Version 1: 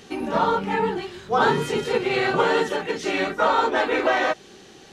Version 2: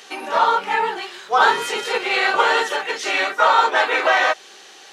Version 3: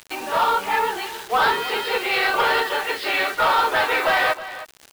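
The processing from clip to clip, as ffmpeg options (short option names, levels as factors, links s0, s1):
-af "highpass=750,volume=2.24"
-af "aresample=11025,asoftclip=type=tanh:threshold=0.224,aresample=44100,acrusher=bits=5:mix=0:aa=0.000001,aecho=1:1:317:0.188"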